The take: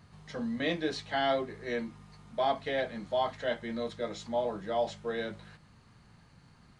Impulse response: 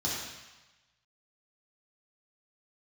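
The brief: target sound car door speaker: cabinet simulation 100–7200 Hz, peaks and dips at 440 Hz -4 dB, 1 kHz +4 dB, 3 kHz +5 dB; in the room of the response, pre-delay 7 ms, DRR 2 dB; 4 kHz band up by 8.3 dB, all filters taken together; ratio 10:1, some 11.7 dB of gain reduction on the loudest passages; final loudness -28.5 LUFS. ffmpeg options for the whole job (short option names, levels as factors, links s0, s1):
-filter_complex "[0:a]equalizer=f=4000:t=o:g=7,acompressor=threshold=0.0158:ratio=10,asplit=2[s0][s1];[1:a]atrim=start_sample=2205,adelay=7[s2];[s1][s2]afir=irnorm=-1:irlink=0,volume=0.355[s3];[s0][s3]amix=inputs=2:normalize=0,highpass=100,equalizer=f=440:t=q:w=4:g=-4,equalizer=f=1000:t=q:w=4:g=4,equalizer=f=3000:t=q:w=4:g=5,lowpass=f=7200:w=0.5412,lowpass=f=7200:w=1.3066,volume=2.82"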